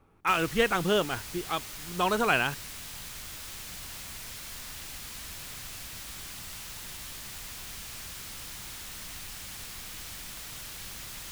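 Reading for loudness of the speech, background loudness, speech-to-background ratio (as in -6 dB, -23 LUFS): -28.0 LUFS, -39.5 LUFS, 11.5 dB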